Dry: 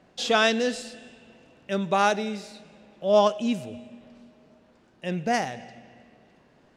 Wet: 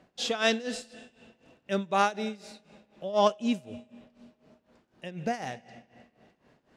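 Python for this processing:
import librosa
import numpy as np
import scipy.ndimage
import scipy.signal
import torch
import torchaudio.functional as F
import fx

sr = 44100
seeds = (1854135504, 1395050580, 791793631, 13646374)

y = fx.cheby_harmonics(x, sr, harmonics=(3,), levels_db=(-28,), full_scale_db=-7.5)
y = y * (1.0 - 0.85 / 2.0 + 0.85 / 2.0 * np.cos(2.0 * np.pi * 4.0 * (np.arange(len(y)) / sr)))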